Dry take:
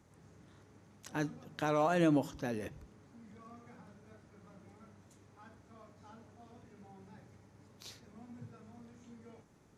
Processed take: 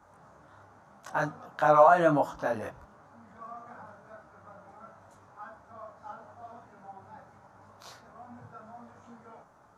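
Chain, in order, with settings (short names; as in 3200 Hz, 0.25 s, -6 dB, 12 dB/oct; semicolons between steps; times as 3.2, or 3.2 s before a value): band shelf 950 Hz +15 dB; detuned doubles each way 27 cents; gain +3 dB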